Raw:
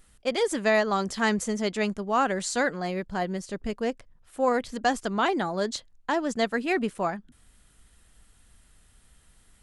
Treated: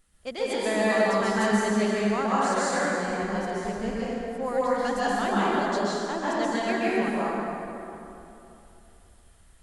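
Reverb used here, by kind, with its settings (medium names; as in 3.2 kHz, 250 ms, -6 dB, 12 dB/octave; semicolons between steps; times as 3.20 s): plate-style reverb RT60 3 s, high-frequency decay 0.6×, pre-delay 115 ms, DRR -8.5 dB; trim -8 dB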